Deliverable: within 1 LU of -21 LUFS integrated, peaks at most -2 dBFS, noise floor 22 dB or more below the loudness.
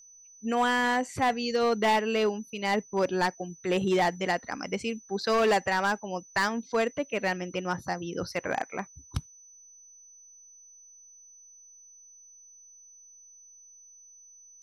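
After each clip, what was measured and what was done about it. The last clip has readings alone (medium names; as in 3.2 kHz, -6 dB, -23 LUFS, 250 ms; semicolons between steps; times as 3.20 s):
clipped samples 1.3%; clipping level -19.5 dBFS; steady tone 6 kHz; tone level -51 dBFS; loudness -28.5 LUFS; peak level -19.5 dBFS; loudness target -21.0 LUFS
-> clip repair -19.5 dBFS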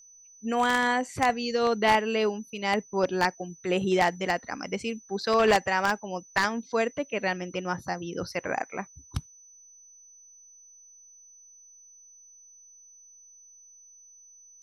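clipped samples 0.0%; steady tone 6 kHz; tone level -51 dBFS
-> band-stop 6 kHz, Q 30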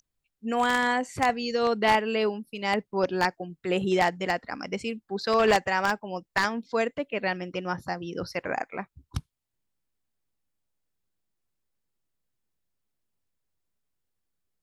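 steady tone not found; loudness -27.0 LUFS; peak level -10.5 dBFS; loudness target -21.0 LUFS
-> trim +6 dB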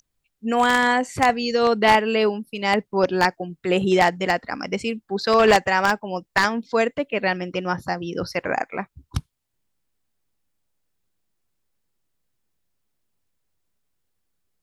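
loudness -21.0 LUFS; peak level -4.5 dBFS; noise floor -77 dBFS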